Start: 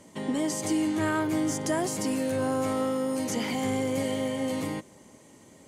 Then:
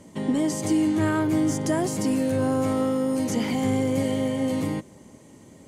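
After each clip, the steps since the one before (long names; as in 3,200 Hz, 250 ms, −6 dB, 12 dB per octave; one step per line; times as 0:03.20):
low-shelf EQ 360 Hz +8.5 dB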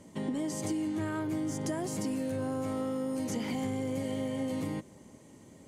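downward compressor, threshold −25 dBFS, peak gain reduction 7 dB
level −5 dB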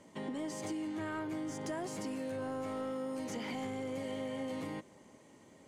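mid-hump overdrive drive 12 dB, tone 3,100 Hz, clips at −21.5 dBFS
level −6 dB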